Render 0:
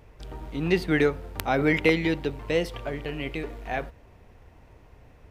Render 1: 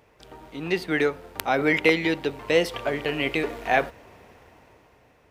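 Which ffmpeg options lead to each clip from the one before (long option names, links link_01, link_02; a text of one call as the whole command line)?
ffmpeg -i in.wav -af "highpass=frequency=360:poles=1,dynaudnorm=framelen=200:gausssize=11:maxgain=11dB" out.wav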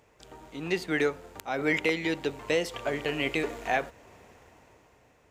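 ffmpeg -i in.wav -af "equalizer=frequency=7100:width_type=o:width=0.45:gain=9,alimiter=limit=-11dB:level=0:latency=1:release=367,volume=-3.5dB" out.wav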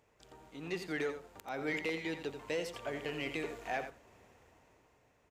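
ffmpeg -i in.wav -af "asoftclip=type=tanh:threshold=-18dB,aecho=1:1:87:0.335,volume=-8.5dB" out.wav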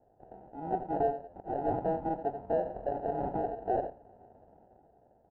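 ffmpeg -i in.wav -af "acrusher=samples=39:mix=1:aa=0.000001,lowpass=frequency=770:width_type=q:width=4.3,volume=1dB" out.wav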